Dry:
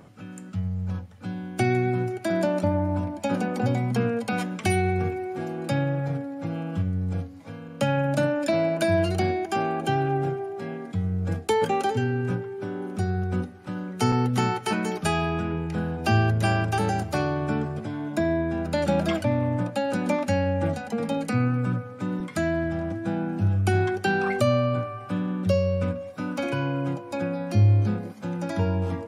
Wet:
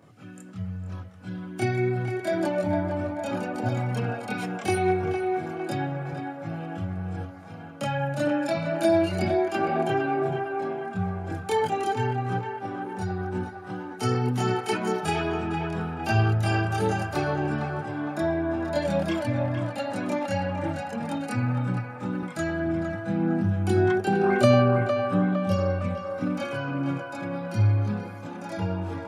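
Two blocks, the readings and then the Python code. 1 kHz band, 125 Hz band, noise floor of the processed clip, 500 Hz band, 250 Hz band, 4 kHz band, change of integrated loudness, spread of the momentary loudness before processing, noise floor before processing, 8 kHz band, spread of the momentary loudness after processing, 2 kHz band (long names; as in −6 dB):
0.0 dB, −2.0 dB, −40 dBFS, 0.0 dB, −1.0 dB, −2.0 dB, −1.0 dB, 9 LU, −41 dBFS, −3.0 dB, 11 LU, −1.0 dB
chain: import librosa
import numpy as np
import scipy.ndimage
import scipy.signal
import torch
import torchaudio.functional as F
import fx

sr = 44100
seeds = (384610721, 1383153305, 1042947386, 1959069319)

y = fx.chorus_voices(x, sr, voices=6, hz=0.85, base_ms=26, depth_ms=1.7, mix_pct=60)
y = scipy.signal.sosfilt(scipy.signal.butter(2, 110.0, 'highpass', fs=sr, output='sos'), y)
y = fx.echo_banded(y, sr, ms=458, feedback_pct=70, hz=1100.0, wet_db=-4.0)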